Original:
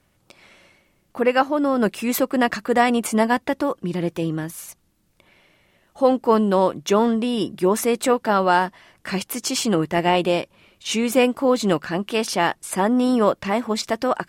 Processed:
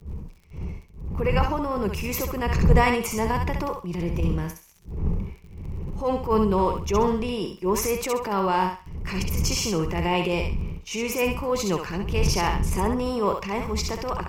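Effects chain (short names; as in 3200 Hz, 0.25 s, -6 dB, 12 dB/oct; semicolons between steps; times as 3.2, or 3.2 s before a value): wind noise 93 Hz -22 dBFS; gate -30 dBFS, range -19 dB; ripple EQ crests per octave 0.79, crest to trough 10 dB; crackle 26/s -37 dBFS; transient shaper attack -8 dB, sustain +4 dB; on a send: thinning echo 66 ms, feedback 31%, high-pass 640 Hz, level -4 dB; on the sum: gain -6 dB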